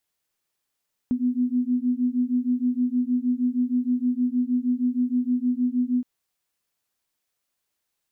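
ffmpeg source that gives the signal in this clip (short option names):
-f lavfi -i "aevalsrc='0.0668*(sin(2*PI*245*t)+sin(2*PI*251.4*t))':d=4.92:s=44100"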